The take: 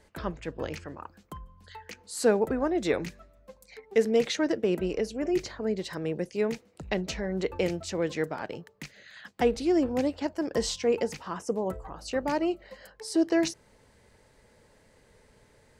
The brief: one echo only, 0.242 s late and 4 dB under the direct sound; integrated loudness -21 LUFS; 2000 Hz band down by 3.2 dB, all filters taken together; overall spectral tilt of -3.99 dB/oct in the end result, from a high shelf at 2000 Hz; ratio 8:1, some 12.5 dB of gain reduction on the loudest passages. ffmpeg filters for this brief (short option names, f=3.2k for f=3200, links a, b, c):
-af "highshelf=f=2k:g=5,equalizer=f=2k:t=o:g=-7,acompressor=threshold=-31dB:ratio=8,aecho=1:1:242:0.631,volume=14.5dB"